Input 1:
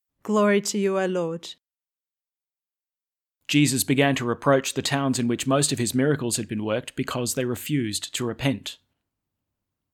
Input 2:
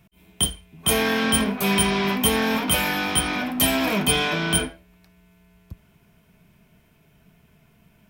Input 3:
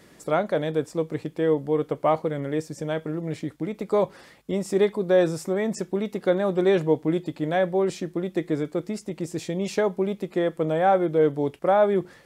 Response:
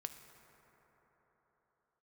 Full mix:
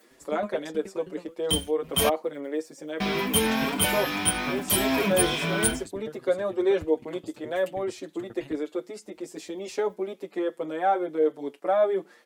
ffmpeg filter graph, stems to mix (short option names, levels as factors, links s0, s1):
-filter_complex "[0:a]acompressor=mode=upward:threshold=0.0562:ratio=2.5,aeval=exprs='val(0)*pow(10,-30*if(lt(mod(9.4*n/s,1),2*abs(9.4)/1000),1-mod(9.4*n/s,1)/(2*abs(9.4)/1000),(mod(9.4*n/s,1)-2*abs(9.4)/1000)/(1-2*abs(9.4)/1000))/20)':c=same,volume=0.376[s0];[1:a]acrusher=bits=6:mix=0:aa=0.5,adelay=1100,volume=0.944,asplit=3[s1][s2][s3];[s1]atrim=end=2.09,asetpts=PTS-STARTPTS,afade=t=out:st=2.086:d=0.004:c=hsin[s4];[s2]atrim=start=2.09:end=3,asetpts=PTS-STARTPTS,volume=0[s5];[s3]atrim=start=3,asetpts=PTS-STARTPTS,afade=t=in:d=0.004:c=hsin[s6];[s4][s5][s6]concat=n=3:v=0:a=1[s7];[2:a]highpass=f=260:w=0.5412,highpass=f=260:w=1.3066,volume=0.841[s8];[s0][s7][s8]amix=inputs=3:normalize=0,asplit=2[s9][s10];[s10]adelay=6.2,afreqshift=2.3[s11];[s9][s11]amix=inputs=2:normalize=1"